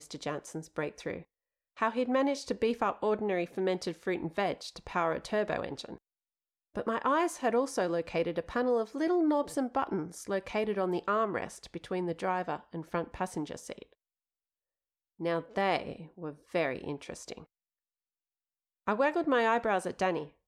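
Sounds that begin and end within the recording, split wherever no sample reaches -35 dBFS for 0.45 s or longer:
1.82–5.95 s
6.76–13.82 s
15.21–17.38 s

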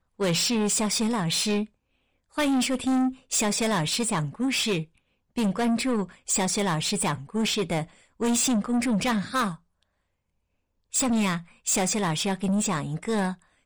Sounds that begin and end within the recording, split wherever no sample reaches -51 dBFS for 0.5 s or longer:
2.33–9.83 s

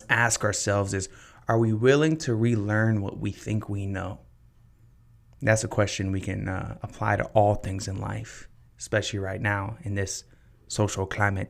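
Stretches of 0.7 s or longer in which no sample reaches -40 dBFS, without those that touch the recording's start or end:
4.16–5.41 s

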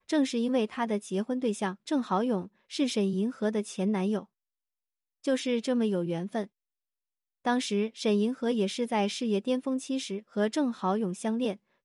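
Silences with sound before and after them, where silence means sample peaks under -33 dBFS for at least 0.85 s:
4.21–5.27 s
6.44–7.46 s

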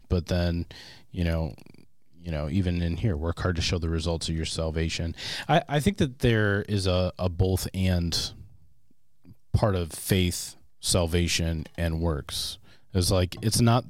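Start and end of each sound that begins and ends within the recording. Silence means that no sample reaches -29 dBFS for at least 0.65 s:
2.27–8.28 s

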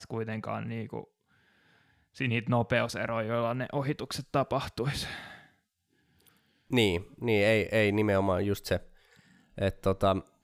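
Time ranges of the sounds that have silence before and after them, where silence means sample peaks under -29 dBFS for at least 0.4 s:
2.21–5.07 s
6.73–8.77 s

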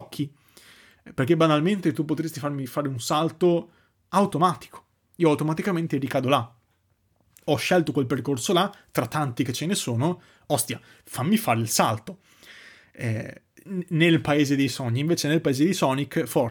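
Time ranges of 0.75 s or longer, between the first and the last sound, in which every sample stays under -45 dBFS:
6.49–7.37 s

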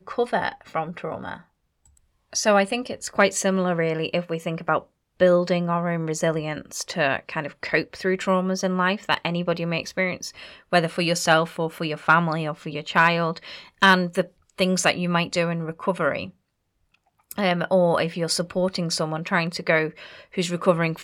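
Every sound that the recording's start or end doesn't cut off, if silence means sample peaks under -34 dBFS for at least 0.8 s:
2.33–16.29 s

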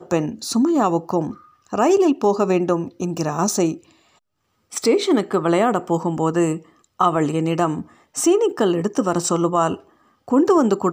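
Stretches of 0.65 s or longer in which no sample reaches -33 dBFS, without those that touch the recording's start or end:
3.77–4.72 s

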